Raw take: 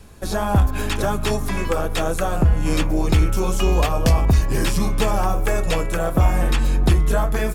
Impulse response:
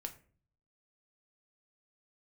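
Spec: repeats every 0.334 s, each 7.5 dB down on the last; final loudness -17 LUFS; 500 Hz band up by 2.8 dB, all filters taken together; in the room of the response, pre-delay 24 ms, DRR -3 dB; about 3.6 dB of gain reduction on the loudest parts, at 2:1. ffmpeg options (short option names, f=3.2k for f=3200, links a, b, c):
-filter_complex "[0:a]equalizer=f=500:t=o:g=3.5,acompressor=threshold=-17dB:ratio=2,aecho=1:1:334|668|1002|1336|1670:0.422|0.177|0.0744|0.0312|0.0131,asplit=2[a][b];[1:a]atrim=start_sample=2205,adelay=24[c];[b][c]afir=irnorm=-1:irlink=0,volume=5.5dB[d];[a][d]amix=inputs=2:normalize=0,volume=-0.5dB"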